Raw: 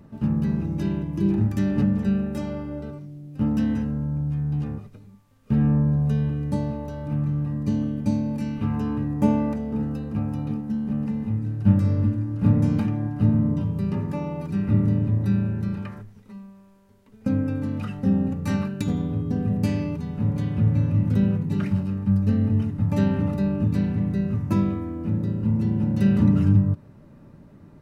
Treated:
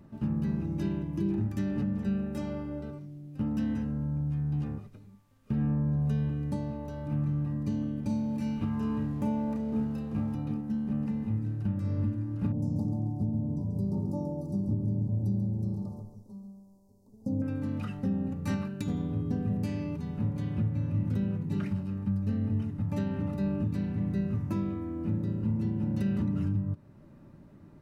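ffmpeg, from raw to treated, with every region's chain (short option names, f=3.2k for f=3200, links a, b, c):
-filter_complex "[0:a]asettb=1/sr,asplit=3[a][b][c];[a]atrim=end=8.034[d];[b]atrim=start=8.03:end=10.35,asetpts=PTS-STARTPTS,afade=t=in:d=0.004:c=qsin,afade=t=out:st=2.316:d=0.004:c=qsin,aeval=exprs='sgn(val(0))*max(abs(val(0))-0.00237,0)':c=same,asplit=2[e][f];[f]adelay=32,volume=-4dB[g];[e][g]amix=inputs=2:normalize=0,atrim=end_sample=102312[h];[c]atrim=start=10.346[i];[d][h]acrossfade=d=0.004:c1=hsin:c2=qsin[j];[j][i]acrossfade=d=0.004:c1=qsin:c2=hsin,asettb=1/sr,asplit=3[k][l][m];[k]atrim=end=12.524[n];[l]atrim=start=12.52:end=17.42,asetpts=PTS-STARTPTS,afade=t=in:d=0.004:c=qsin,afade=t=out:st=4.896:d=0.004:c=qsin,asuperstop=centerf=2100:order=8:qfactor=0.52,aecho=1:1:137|274|411|548:0.376|0.113|0.0338|0.0101,atrim=end_sample=216090[o];[m]atrim=start=17.416[p];[n][o]acrossfade=d=0.004:c1=hsin:c2=qsin[q];[q][p]acrossfade=d=0.004:c1=qsin:c2=hsin,equalizer=f=330:w=5.8:g=3,bandreject=f=460:w=15,alimiter=limit=-16dB:level=0:latency=1:release=432,volume=-5dB"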